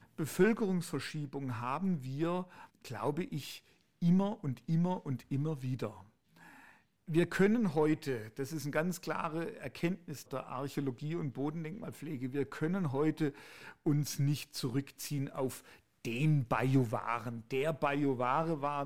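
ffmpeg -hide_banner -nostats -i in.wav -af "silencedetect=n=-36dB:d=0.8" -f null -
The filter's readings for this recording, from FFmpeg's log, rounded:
silence_start: 5.88
silence_end: 7.10 | silence_duration: 1.21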